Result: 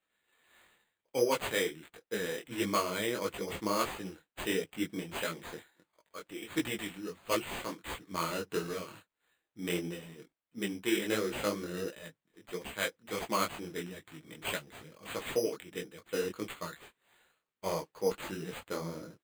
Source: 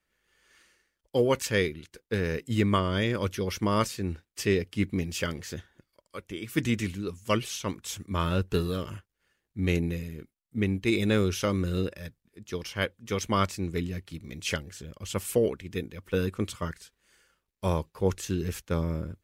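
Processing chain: Bessel high-pass 340 Hz, order 2; comb 6.3 ms, depth 38%; careless resampling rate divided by 8×, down none, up hold; detuned doubles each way 52 cents

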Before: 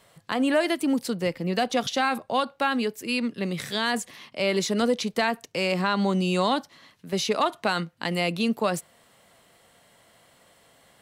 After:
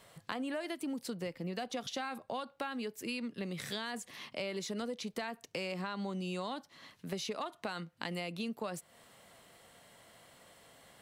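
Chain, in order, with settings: compressor 6:1, threshold -35 dBFS, peak gain reduction 16 dB; gain -1.5 dB

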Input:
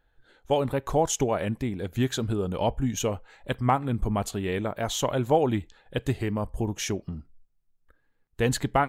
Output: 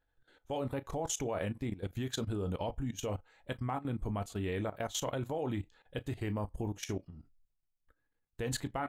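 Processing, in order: on a send at -9.5 dB: reverb, pre-delay 5 ms; on the sum: level quantiser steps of 15 dB; gain -4.5 dB

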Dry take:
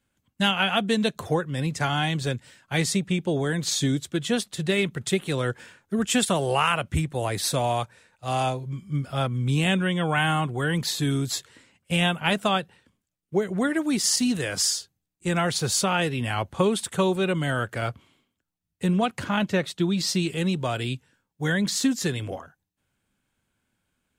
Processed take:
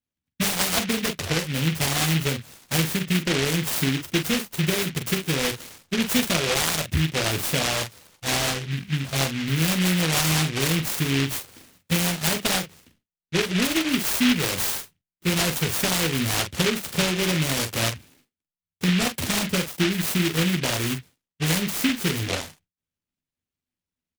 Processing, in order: gate with hold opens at -51 dBFS; tone controls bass -1 dB, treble -8 dB; compressor, threshold -26 dBFS, peak gain reduction 8.5 dB; early reflections 12 ms -5.5 dB, 44 ms -7 dB; noise-modulated delay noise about 2400 Hz, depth 0.3 ms; gain +5 dB

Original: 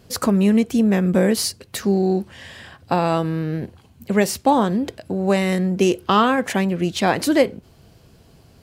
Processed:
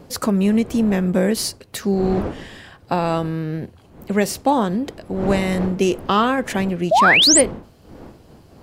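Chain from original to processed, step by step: wind noise 430 Hz -33 dBFS; painted sound rise, 6.91–7.41, 580–10000 Hz -12 dBFS; gain -1 dB

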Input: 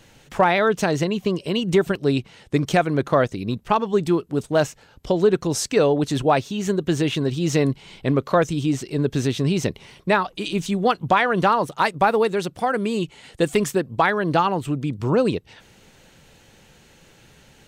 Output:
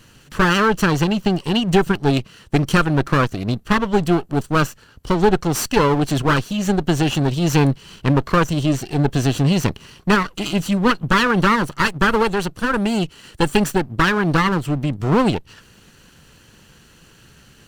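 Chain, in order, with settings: minimum comb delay 0.69 ms; gain +4 dB

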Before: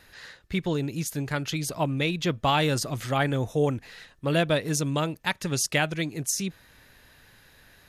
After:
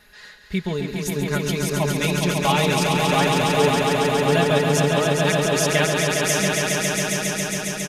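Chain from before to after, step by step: comb 4.8 ms, depth 69%; on a send: swelling echo 0.137 s, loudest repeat 5, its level -4.5 dB

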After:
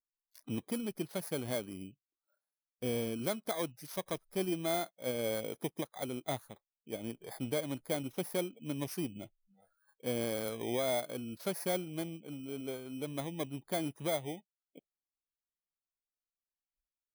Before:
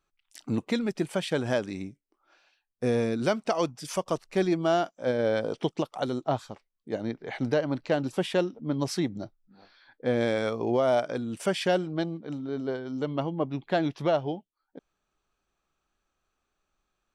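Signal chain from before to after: FFT order left unsorted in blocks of 16 samples; spectral noise reduction 20 dB; vibrato 0.48 Hz 7.6 cents; gain -9 dB

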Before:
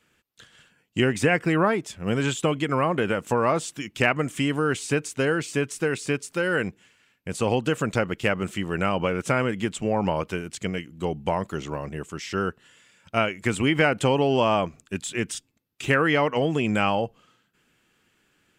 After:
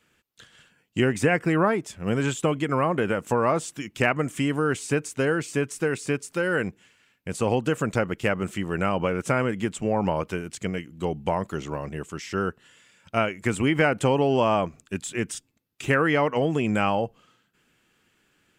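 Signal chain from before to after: dynamic EQ 3600 Hz, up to -5 dB, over -43 dBFS, Q 1.1

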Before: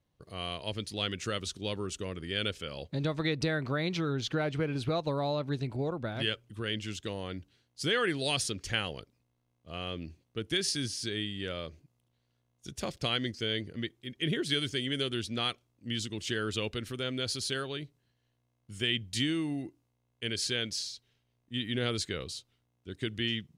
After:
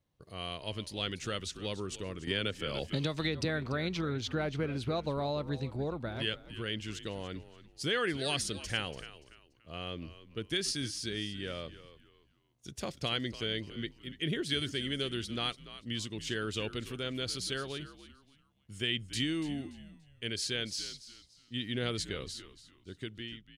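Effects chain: ending faded out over 0.84 s; frequency-shifting echo 0.288 s, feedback 30%, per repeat -74 Hz, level -14.5 dB; 2.27–3.45 three-band squash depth 100%; gain -2.5 dB

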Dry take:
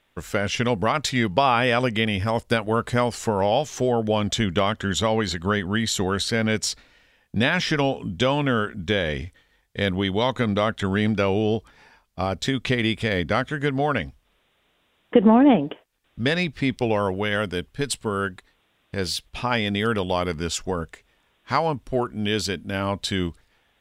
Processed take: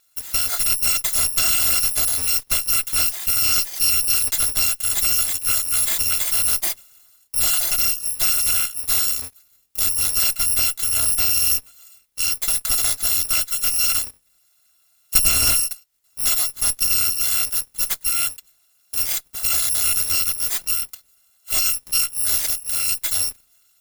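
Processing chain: FFT order left unsorted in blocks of 256 samples; tilt +2 dB/oct; added harmonics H 3 -15 dB, 7 -10 dB, 8 -18 dB, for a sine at 5.5 dBFS; gain -5.5 dB

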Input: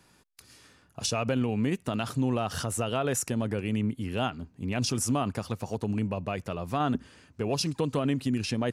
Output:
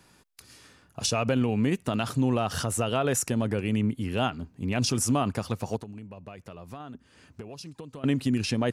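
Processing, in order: 5.76–8.04 compressor 12:1, threshold -41 dBFS, peak gain reduction 18 dB; gain +2.5 dB

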